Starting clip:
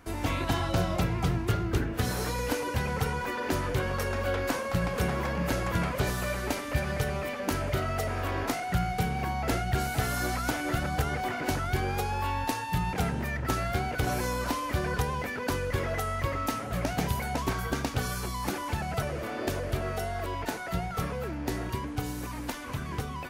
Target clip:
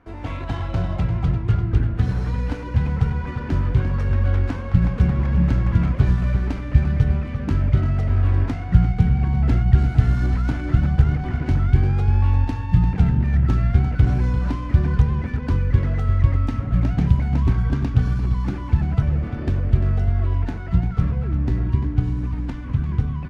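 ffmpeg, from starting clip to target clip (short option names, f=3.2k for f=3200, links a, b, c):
-af "asubboost=boost=8:cutoff=190,aecho=1:1:346:0.335,adynamicsmooth=sensitivity=2:basefreq=2.4k,volume=-1dB"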